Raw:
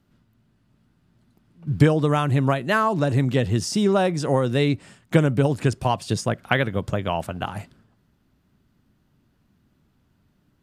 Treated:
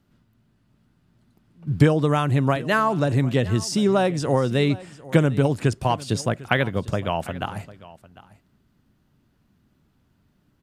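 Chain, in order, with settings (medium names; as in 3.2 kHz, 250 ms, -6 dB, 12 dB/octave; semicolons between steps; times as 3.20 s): delay 750 ms -19.5 dB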